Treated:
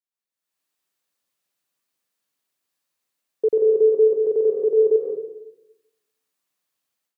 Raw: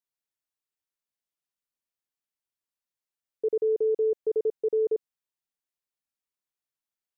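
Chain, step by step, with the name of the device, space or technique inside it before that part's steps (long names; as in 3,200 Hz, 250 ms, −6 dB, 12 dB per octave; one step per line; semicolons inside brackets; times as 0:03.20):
far laptop microphone (convolution reverb RT60 0.85 s, pre-delay 115 ms, DRR −1 dB; high-pass filter 150 Hz 12 dB per octave; automatic gain control gain up to 15.5 dB)
level −6.5 dB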